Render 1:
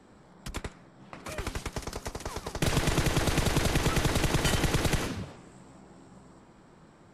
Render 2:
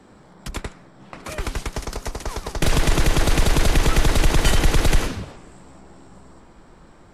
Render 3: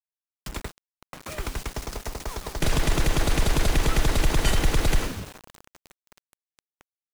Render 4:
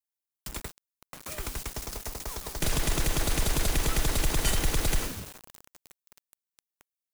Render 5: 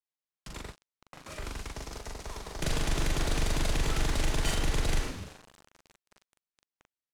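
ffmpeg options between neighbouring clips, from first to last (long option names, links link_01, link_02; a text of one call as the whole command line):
ffmpeg -i in.wav -af "asubboost=boost=4.5:cutoff=57,volume=6.5dB" out.wav
ffmpeg -i in.wav -af "acrusher=bits=5:mix=0:aa=0.000001,volume=-4.5dB" out.wav
ffmpeg -i in.wav -af "crystalizer=i=1.5:c=0,volume=-5.5dB" out.wav
ffmpeg -i in.wav -filter_complex "[0:a]asplit=2[link_01][link_02];[link_02]adelay=41,volume=-2dB[link_03];[link_01][link_03]amix=inputs=2:normalize=0,adynamicsmooth=sensitivity=3:basefreq=5900,volume=-3.5dB" out.wav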